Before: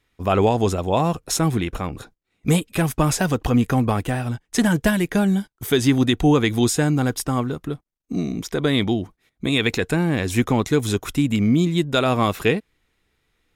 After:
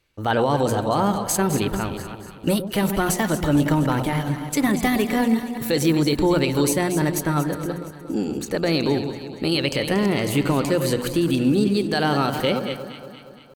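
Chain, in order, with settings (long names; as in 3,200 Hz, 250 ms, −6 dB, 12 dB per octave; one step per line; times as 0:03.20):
delay that plays each chunk backwards 180 ms, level −11 dB
mains-hum notches 50/100/150/200 Hz
brickwall limiter −11 dBFS, peak gain reduction 6 dB
pitch shifter +3 semitones
on a send: delay that swaps between a low-pass and a high-pass 117 ms, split 870 Hz, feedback 75%, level −9.5 dB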